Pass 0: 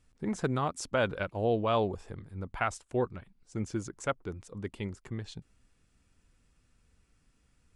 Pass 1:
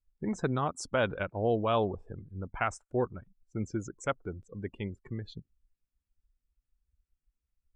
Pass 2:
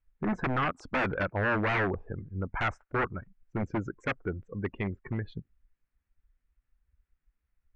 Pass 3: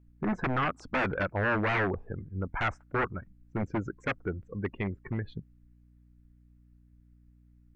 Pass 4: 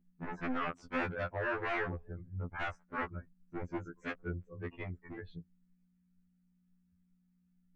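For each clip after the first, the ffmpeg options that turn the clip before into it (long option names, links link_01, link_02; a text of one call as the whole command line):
ffmpeg -i in.wav -af "afftdn=noise_reduction=26:noise_floor=-47" out.wav
ffmpeg -i in.wav -af "aeval=exprs='0.0376*(abs(mod(val(0)/0.0376+3,4)-2)-1)':channel_layout=same,lowpass=frequency=1900:width_type=q:width=1.9,volume=5dB" out.wav
ffmpeg -i in.wav -af "aeval=exprs='val(0)+0.00126*(sin(2*PI*60*n/s)+sin(2*PI*2*60*n/s)/2+sin(2*PI*3*60*n/s)/3+sin(2*PI*4*60*n/s)/4+sin(2*PI*5*60*n/s)/5)':channel_layout=same" out.wav
ffmpeg -i in.wav -af "afftfilt=real='re*2*eq(mod(b,4),0)':imag='im*2*eq(mod(b,4),0)':win_size=2048:overlap=0.75,volume=-5dB" out.wav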